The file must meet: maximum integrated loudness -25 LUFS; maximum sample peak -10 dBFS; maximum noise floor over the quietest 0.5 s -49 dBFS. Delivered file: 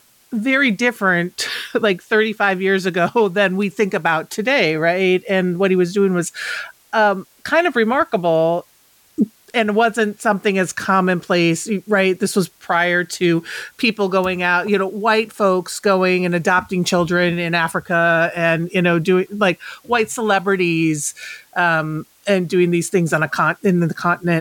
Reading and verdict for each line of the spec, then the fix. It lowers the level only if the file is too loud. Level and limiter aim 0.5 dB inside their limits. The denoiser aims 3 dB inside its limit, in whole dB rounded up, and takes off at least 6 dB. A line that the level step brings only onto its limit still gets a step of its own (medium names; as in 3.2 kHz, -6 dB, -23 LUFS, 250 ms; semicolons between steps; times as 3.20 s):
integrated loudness -17.5 LUFS: fail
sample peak -5.0 dBFS: fail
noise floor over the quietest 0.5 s -54 dBFS: pass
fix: trim -8 dB